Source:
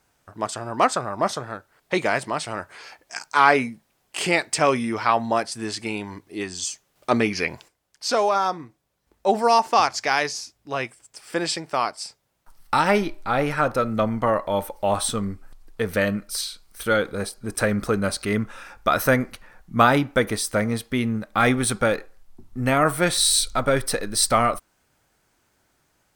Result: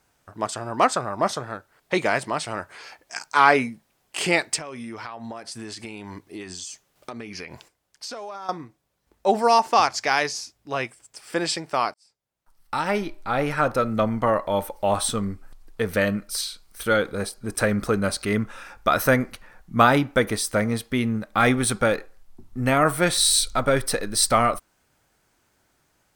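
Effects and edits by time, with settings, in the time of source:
4.56–8.49 s: compression 16:1, threshold -31 dBFS
11.94–13.67 s: fade in

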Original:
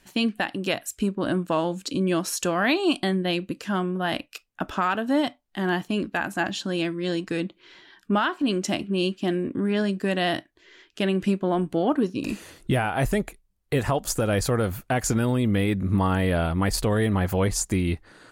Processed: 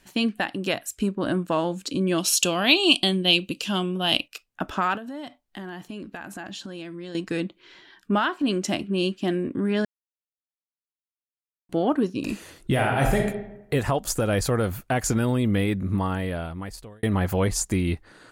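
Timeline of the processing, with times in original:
2.18–4.28 s: resonant high shelf 2.3 kHz +7 dB, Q 3
4.97–7.15 s: compression, threshold -33 dBFS
9.85–11.69 s: mute
12.72–13.18 s: reverb throw, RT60 0.88 s, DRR 0.5 dB
15.58–17.03 s: fade out

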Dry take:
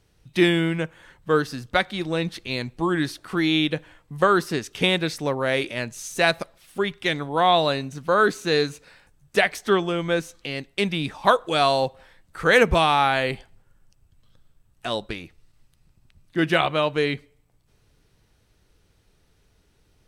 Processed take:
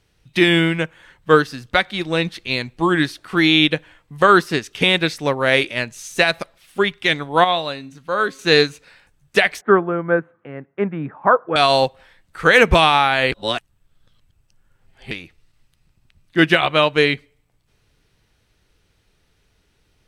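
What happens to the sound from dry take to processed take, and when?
7.44–8.39 s: feedback comb 270 Hz, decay 0.48 s
9.61–11.56 s: elliptic band-pass 120–1500 Hz, stop band 50 dB
13.32–15.11 s: reverse
whole clip: peaking EQ 2.5 kHz +5 dB 2 oct; loudness maximiser +7.5 dB; upward expansion 1.5:1, over -25 dBFS

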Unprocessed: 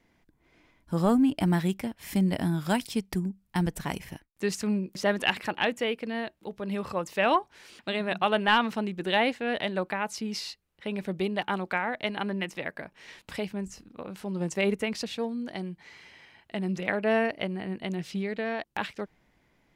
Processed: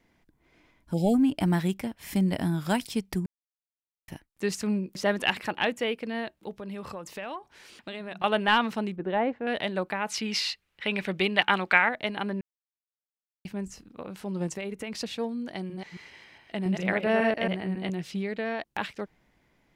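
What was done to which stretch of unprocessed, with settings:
0.94–1.14 s: spectral selection erased 860–2100 Hz
3.26–4.08 s: mute
6.53–8.24 s: compression 4:1, threshold -35 dBFS
8.96–9.47 s: low-pass 1.2 kHz
10.07–11.89 s: peaking EQ 2.4 kHz +12 dB 2.3 oct
12.41–13.45 s: mute
14.47–14.97 s: compression, threshold -31 dBFS
15.56–17.90 s: chunks repeated in reverse 137 ms, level -3 dB

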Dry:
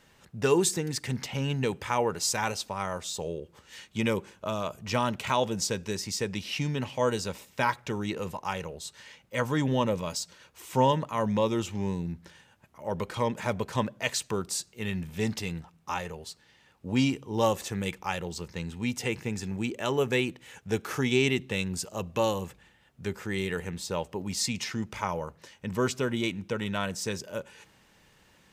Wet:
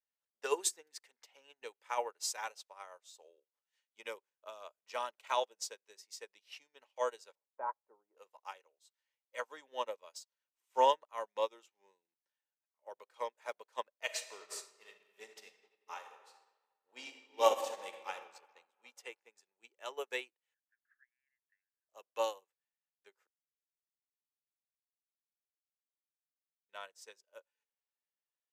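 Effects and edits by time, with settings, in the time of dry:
7.35–8.17 s: low-pass 1.1 kHz 24 dB/octave
14.02–18.13 s: reverb throw, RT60 2.9 s, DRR 0 dB
20.54–21.89 s: Butterworth band-pass 1.7 kHz, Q 5.4
23.27–26.69 s: mute
whole clip: high-pass 480 Hz 24 dB/octave; upward expansion 2.5:1, over -48 dBFS

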